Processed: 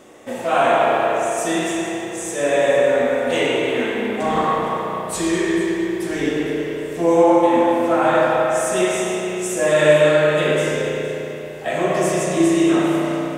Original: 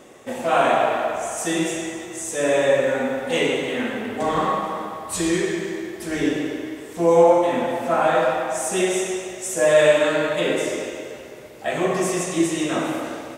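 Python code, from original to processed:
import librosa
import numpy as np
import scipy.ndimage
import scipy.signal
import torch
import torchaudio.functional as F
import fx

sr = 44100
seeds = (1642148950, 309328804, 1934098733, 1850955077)

y = fx.echo_alternate(x, sr, ms=231, hz=800.0, feedback_pct=58, wet_db=-11.0)
y = fx.rev_spring(y, sr, rt60_s=2.7, pass_ms=(33,), chirp_ms=65, drr_db=0.5)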